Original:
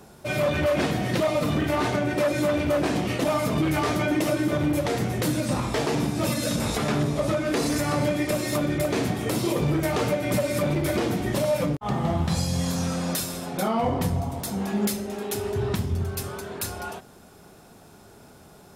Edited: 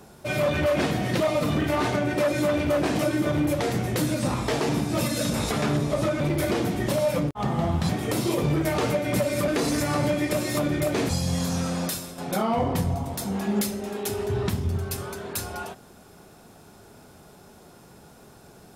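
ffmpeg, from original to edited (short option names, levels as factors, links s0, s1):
-filter_complex "[0:a]asplit=7[s0][s1][s2][s3][s4][s5][s6];[s0]atrim=end=2.992[s7];[s1]atrim=start=4.248:end=7.462[s8];[s2]atrim=start=10.658:end=12.352[s9];[s3]atrim=start=9.068:end=10.662[s10];[s4]atrim=start=7.458:end=9.072[s11];[s5]atrim=start=12.348:end=13.44,asetpts=PTS-STARTPTS,afade=t=out:st=0.702:d=0.39:silence=0.375837[s12];[s6]atrim=start=13.44,asetpts=PTS-STARTPTS,afade=t=in:d=0.004:c=hsin:silence=0.375837[s13];[s7][s8]acrossfade=d=0.004:c1=hsin:c2=hsin[s14];[s14][s9]acrossfade=d=0.004:c1=hsin:c2=hsin[s15];[s15][s10]acrossfade=d=0.004:c1=hsin:c2=hsin[s16];[s16][s11]acrossfade=d=0.004:c1=hsin:c2=hsin[s17];[s12][s13]concat=n=2:v=0:a=1[s18];[s17][s18]acrossfade=d=0.004:c1=hsin:c2=hsin"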